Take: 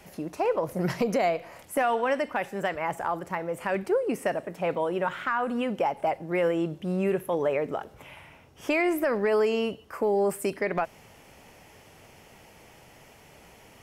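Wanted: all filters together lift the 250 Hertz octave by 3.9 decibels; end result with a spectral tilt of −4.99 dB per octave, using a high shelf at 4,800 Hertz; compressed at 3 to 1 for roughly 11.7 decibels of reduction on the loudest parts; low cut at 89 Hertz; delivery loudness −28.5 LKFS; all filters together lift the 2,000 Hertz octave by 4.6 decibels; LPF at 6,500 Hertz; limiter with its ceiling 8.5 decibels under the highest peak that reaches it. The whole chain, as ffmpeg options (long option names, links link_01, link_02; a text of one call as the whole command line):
ffmpeg -i in.wav -af "highpass=89,lowpass=6500,equalizer=frequency=250:width_type=o:gain=5.5,equalizer=frequency=2000:width_type=o:gain=7,highshelf=frequency=4800:gain=-9,acompressor=threshold=-35dB:ratio=3,volume=9.5dB,alimiter=limit=-18.5dB:level=0:latency=1" out.wav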